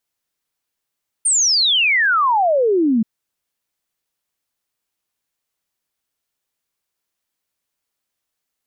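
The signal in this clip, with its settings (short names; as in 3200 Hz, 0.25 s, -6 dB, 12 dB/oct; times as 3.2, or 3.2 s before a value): log sweep 9100 Hz -> 210 Hz 1.78 s -12.5 dBFS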